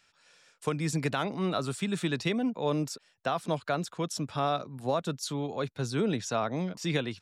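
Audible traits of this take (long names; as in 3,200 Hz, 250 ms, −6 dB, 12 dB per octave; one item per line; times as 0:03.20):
background noise floor −69 dBFS
spectral slope −5.0 dB per octave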